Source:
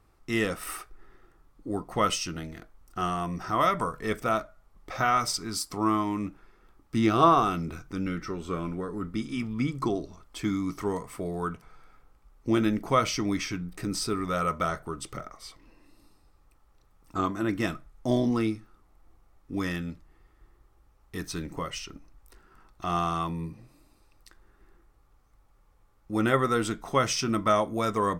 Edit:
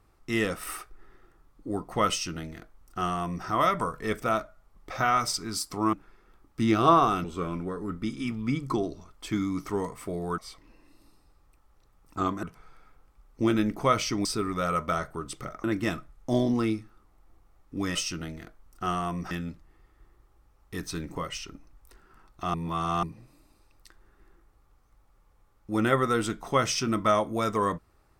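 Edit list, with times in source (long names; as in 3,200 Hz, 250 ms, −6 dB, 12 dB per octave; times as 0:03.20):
0:02.10–0:03.46: duplicate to 0:19.72
0:05.93–0:06.28: remove
0:07.59–0:08.36: remove
0:13.32–0:13.97: remove
0:15.36–0:17.41: move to 0:11.50
0:22.95–0:23.44: reverse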